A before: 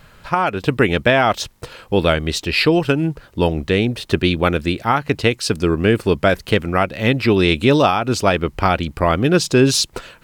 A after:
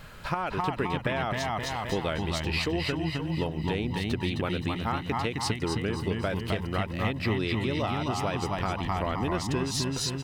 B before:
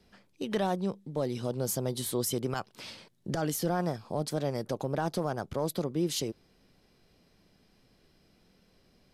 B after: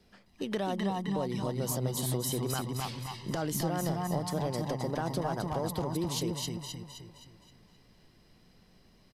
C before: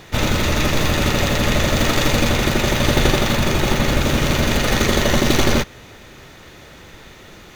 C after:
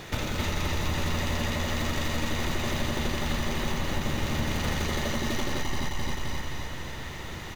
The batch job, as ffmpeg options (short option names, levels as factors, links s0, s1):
-filter_complex "[0:a]asplit=2[s0][s1];[s1]aecho=0:1:261|522|783|1044|1305:0.562|0.231|0.0945|0.0388|0.0159[s2];[s0][s2]amix=inputs=2:normalize=0,acompressor=threshold=0.0398:ratio=6,asplit=2[s3][s4];[s4]adelay=262,lowpass=f=4500:p=1,volume=0.596,asplit=2[s5][s6];[s6]adelay=262,lowpass=f=4500:p=1,volume=0.51,asplit=2[s7][s8];[s8]adelay=262,lowpass=f=4500:p=1,volume=0.51,asplit=2[s9][s10];[s10]adelay=262,lowpass=f=4500:p=1,volume=0.51,asplit=2[s11][s12];[s12]adelay=262,lowpass=f=4500:p=1,volume=0.51,asplit=2[s13][s14];[s14]adelay=262,lowpass=f=4500:p=1,volume=0.51,asplit=2[s15][s16];[s16]adelay=262,lowpass=f=4500:p=1,volume=0.51[s17];[s5][s7][s9][s11][s13][s15][s17]amix=inputs=7:normalize=0[s18];[s3][s18]amix=inputs=2:normalize=0"